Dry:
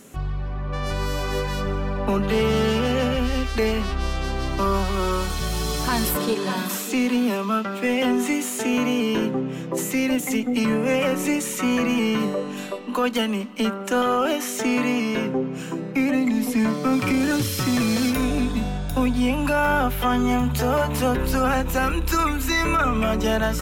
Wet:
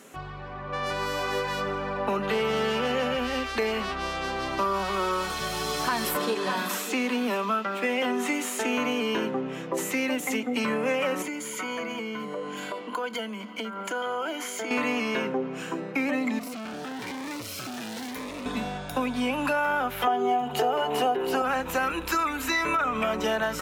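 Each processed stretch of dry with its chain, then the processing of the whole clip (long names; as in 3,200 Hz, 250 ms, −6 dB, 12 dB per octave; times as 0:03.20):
0:11.22–0:14.71: EQ curve with evenly spaced ripples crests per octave 1.8, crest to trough 11 dB + downward compressor 5 to 1, threshold −28 dBFS
0:16.39–0:18.46: hard clipping −30 dBFS + phaser whose notches keep moving one way rising 1 Hz
0:20.07–0:21.42: high-pass filter 110 Hz + hollow resonant body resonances 410/720/2,900 Hz, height 17 dB
whole clip: high-pass filter 760 Hz 6 dB per octave; high-shelf EQ 3,400 Hz −10 dB; downward compressor, threshold −27 dBFS; level +4.5 dB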